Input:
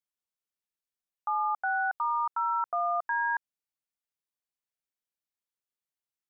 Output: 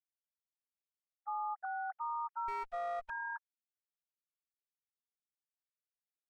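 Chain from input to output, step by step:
three sine waves on the formant tracks
brickwall limiter −23.5 dBFS, peak gain reduction 3 dB
0:02.48–0:03.10: windowed peak hold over 9 samples
level −8 dB

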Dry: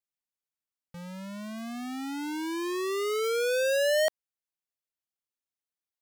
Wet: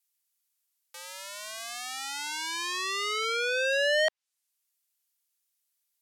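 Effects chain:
treble cut that deepens with the level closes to 2,600 Hz, closed at −26.5 dBFS
high-pass filter 490 Hz 24 dB per octave
spectral tilt +4.5 dB per octave
level +2 dB

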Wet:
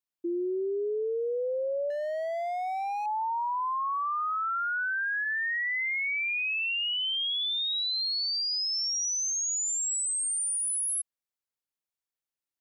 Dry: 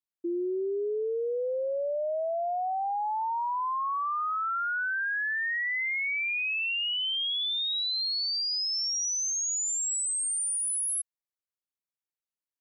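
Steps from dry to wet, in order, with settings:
0:01.90–0:03.06: gain into a clipping stage and back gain 30 dB
0:04.69–0:05.24: low-pass filter 6,100 Hz → 2,700 Hz 24 dB per octave

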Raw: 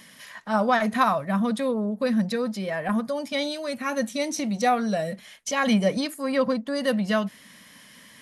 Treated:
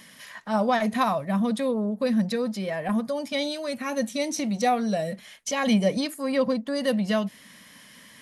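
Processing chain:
dynamic equaliser 1,400 Hz, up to −7 dB, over −40 dBFS, Q 1.9

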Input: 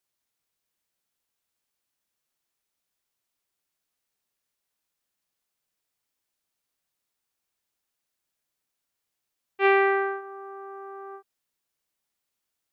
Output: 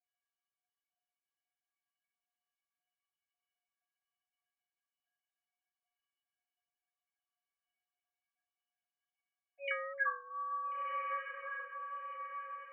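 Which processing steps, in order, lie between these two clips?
three sine waves on the formant tracks
stiff-string resonator 340 Hz, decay 0.42 s, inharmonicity 0.03
feedback delay with all-pass diffusion 1,406 ms, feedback 44%, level −5.5 dB
level +10 dB

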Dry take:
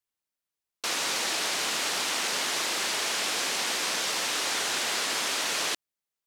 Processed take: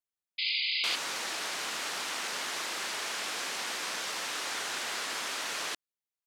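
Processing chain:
sound drawn into the spectrogram noise, 0:00.38–0:00.96, 2,000–5,000 Hz −24 dBFS
dynamic equaliser 1,400 Hz, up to +4 dB, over −42 dBFS, Q 0.84
level −8 dB

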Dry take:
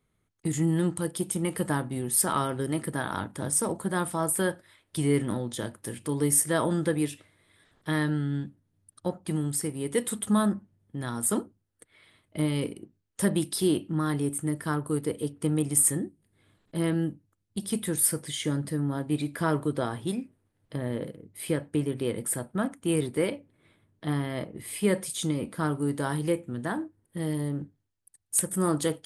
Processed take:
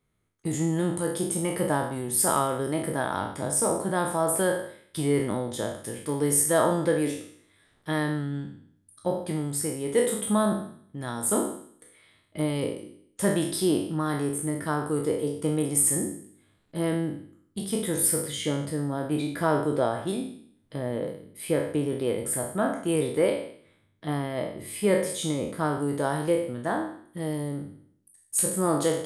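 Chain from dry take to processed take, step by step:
peak hold with a decay on every bin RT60 0.66 s
dynamic equaliser 650 Hz, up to +8 dB, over −42 dBFS, Q 1.1
level −2.5 dB

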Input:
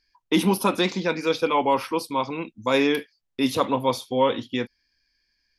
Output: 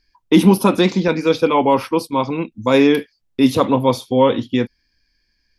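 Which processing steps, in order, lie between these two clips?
0:01.08–0:02.52: noise gate −31 dBFS, range −9 dB
low-shelf EQ 470 Hz +9 dB
level +3 dB

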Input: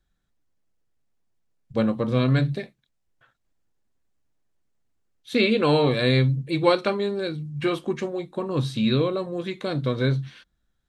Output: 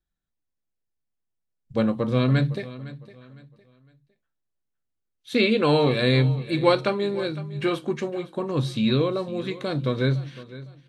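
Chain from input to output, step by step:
noise reduction from a noise print of the clip's start 11 dB
repeating echo 508 ms, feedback 31%, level −17 dB

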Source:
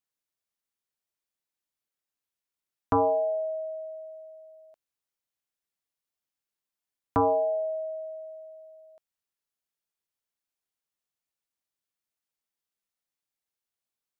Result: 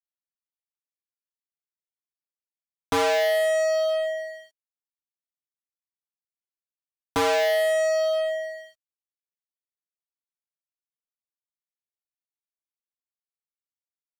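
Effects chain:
graphic EQ with 15 bands 160 Hz +9 dB, 400 Hz +9 dB, 1,600 Hz +8 dB
fuzz pedal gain 38 dB, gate −45 dBFS
level −7.5 dB

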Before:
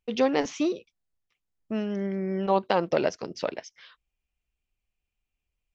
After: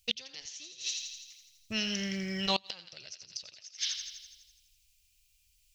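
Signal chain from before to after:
drawn EQ curve 110 Hz 0 dB, 260 Hz −22 dB, 1,000 Hz −18 dB, 4,300 Hz +14 dB
on a send: feedback echo with a high-pass in the loop 83 ms, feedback 65%, high-pass 880 Hz, level −7.5 dB
on the sum: gate with flip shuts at −23 dBFS, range −26 dB
level +9 dB

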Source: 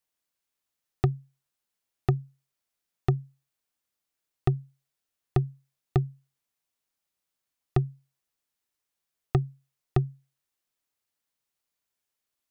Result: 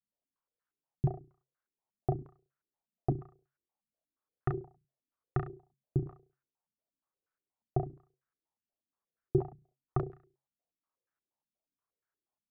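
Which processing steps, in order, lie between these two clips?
flutter between parallel walls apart 5.8 metres, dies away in 0.4 s
regular buffer underruns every 0.30 s, samples 64, repeat, from 0:00.71
low-pass on a step sequencer 8.4 Hz 210–1,500 Hz
level −8.5 dB

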